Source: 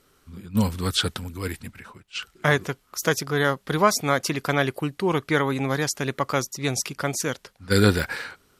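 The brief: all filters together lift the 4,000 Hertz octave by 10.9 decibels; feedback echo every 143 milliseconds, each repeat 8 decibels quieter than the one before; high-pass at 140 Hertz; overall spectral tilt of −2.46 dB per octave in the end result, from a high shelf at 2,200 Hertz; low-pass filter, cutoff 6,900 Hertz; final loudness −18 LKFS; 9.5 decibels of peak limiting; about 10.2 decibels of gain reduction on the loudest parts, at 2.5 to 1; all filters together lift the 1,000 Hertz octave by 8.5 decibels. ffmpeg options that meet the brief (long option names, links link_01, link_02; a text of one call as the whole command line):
ffmpeg -i in.wav -af "highpass=140,lowpass=6900,equalizer=frequency=1000:width_type=o:gain=8.5,highshelf=frequency=2200:gain=6.5,equalizer=frequency=4000:width_type=o:gain=7.5,acompressor=threshold=-22dB:ratio=2.5,alimiter=limit=-13.5dB:level=0:latency=1,aecho=1:1:143|286|429|572|715:0.398|0.159|0.0637|0.0255|0.0102,volume=8.5dB" out.wav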